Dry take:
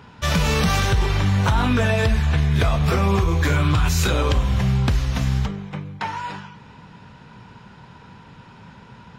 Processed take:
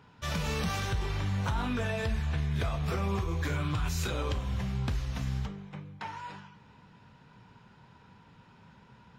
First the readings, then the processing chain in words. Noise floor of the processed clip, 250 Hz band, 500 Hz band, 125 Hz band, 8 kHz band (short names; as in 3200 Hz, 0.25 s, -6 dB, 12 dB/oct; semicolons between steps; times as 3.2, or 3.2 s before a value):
-58 dBFS, -12.0 dB, -12.0 dB, -12.5 dB, -12.5 dB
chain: flange 0.27 Hz, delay 6.4 ms, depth 9.7 ms, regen -73%; gain -8 dB